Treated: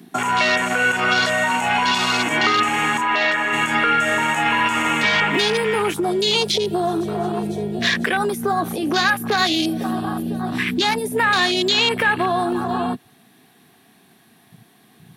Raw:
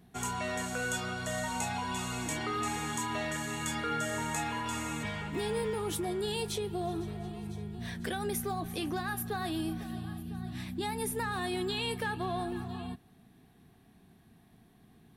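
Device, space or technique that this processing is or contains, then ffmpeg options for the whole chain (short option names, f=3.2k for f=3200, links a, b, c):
mastering chain: -filter_complex "[0:a]highpass=60,equalizer=f=180:t=o:w=0.23:g=-3,acrossover=split=240|2000[a][b][c];[a]acompressor=threshold=-47dB:ratio=4[d];[b]acompressor=threshold=-43dB:ratio=4[e];[c]acompressor=threshold=-43dB:ratio=4[f];[d][e][f]amix=inputs=3:normalize=0,acompressor=threshold=-42dB:ratio=2.5,asoftclip=type=tanh:threshold=-32dB,tiltshelf=f=910:g=-4.5,alimiter=level_in=34.5dB:limit=-1dB:release=50:level=0:latency=1,afwtdn=0.2,highpass=180,asplit=3[g][h][i];[g]afade=t=out:st=3:d=0.02[j];[h]bass=f=250:g=-12,treble=f=4k:g=-11,afade=t=in:st=3:d=0.02,afade=t=out:st=3.52:d=0.02[k];[i]afade=t=in:st=3.52:d=0.02[l];[j][k][l]amix=inputs=3:normalize=0,volume=-6.5dB"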